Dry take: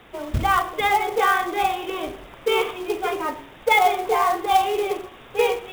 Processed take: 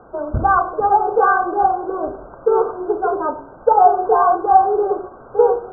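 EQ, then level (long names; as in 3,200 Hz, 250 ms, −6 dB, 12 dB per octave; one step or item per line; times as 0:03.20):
linear-phase brick-wall low-pass 1,600 Hz
parametric band 590 Hz +6 dB 1.2 octaves
+2.5 dB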